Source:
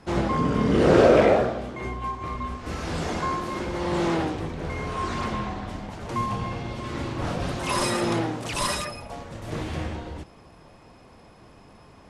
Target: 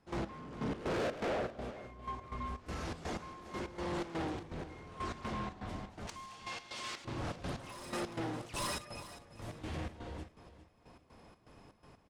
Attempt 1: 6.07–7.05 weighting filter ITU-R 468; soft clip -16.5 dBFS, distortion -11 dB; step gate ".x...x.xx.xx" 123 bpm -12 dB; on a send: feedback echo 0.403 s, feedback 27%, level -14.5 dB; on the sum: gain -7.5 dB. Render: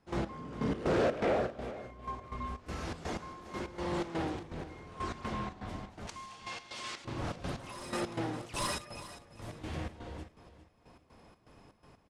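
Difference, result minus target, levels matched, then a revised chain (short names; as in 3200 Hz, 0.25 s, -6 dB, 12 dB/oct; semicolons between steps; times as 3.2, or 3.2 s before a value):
soft clip: distortion -6 dB
6.07–7.05 weighting filter ITU-R 468; soft clip -25 dBFS, distortion -5 dB; step gate ".x...x.xx.xx" 123 bpm -12 dB; on a send: feedback echo 0.403 s, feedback 27%, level -14.5 dB; on the sum: gain -7.5 dB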